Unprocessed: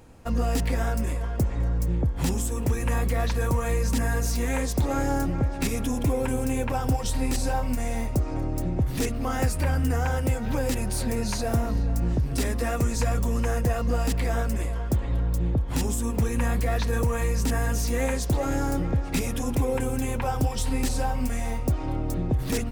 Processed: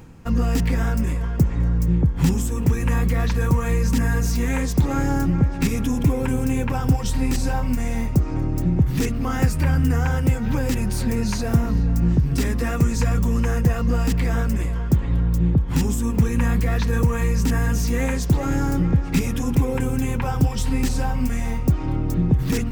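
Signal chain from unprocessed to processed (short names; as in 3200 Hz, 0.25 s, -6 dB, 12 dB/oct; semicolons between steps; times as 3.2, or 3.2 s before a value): fifteen-band EQ 160 Hz +8 dB, 630 Hz -8 dB, 4000 Hz -3 dB, 10000 Hz -7 dB; reverse; upward compressor, threshold -32 dBFS; reverse; gain +4 dB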